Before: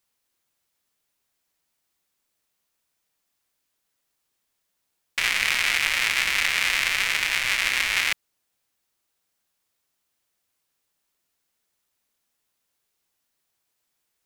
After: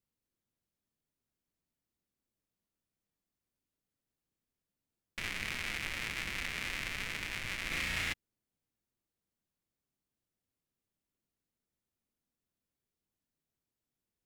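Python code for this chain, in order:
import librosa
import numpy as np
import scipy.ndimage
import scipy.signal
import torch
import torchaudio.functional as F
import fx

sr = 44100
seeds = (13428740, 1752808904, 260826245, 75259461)

y = fx.curve_eq(x, sr, hz=(230.0, 850.0, 4200.0), db=(0, -14, -17))
y = fx.room_flutter(y, sr, wall_m=6.0, rt60_s=0.88, at=(7.7, 8.12), fade=0.02)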